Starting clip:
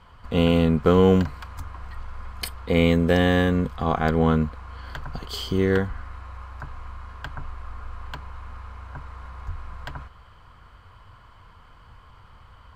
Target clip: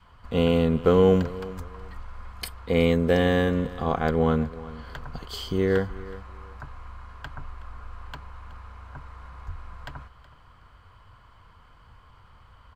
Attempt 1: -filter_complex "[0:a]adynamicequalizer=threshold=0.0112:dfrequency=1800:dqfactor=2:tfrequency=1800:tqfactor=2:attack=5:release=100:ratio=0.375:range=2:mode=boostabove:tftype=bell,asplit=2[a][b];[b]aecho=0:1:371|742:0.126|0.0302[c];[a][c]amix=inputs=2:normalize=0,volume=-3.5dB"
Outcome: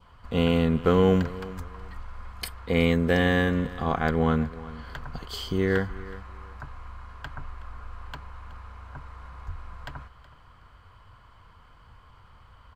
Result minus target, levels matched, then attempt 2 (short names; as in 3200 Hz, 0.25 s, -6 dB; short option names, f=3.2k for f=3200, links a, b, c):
2000 Hz band +4.5 dB
-filter_complex "[0:a]adynamicequalizer=threshold=0.0112:dfrequency=500:dqfactor=2:tfrequency=500:tqfactor=2:attack=5:release=100:ratio=0.375:range=2:mode=boostabove:tftype=bell,asplit=2[a][b];[b]aecho=0:1:371|742:0.126|0.0302[c];[a][c]amix=inputs=2:normalize=0,volume=-3.5dB"